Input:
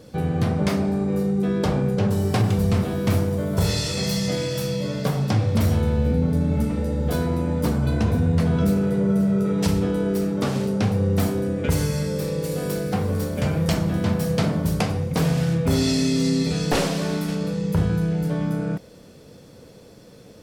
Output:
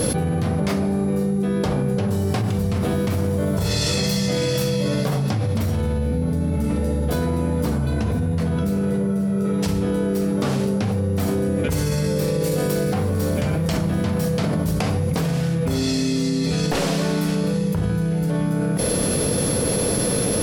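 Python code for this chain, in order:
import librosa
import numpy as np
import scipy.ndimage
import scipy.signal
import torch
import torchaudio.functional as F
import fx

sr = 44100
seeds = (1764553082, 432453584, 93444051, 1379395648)

y = x + 10.0 ** (-50.0 / 20.0) * np.sin(2.0 * np.pi * 11000.0 * np.arange(len(x)) / sr)
y = fx.env_flatten(y, sr, amount_pct=100)
y = y * 10.0 ** (-4.5 / 20.0)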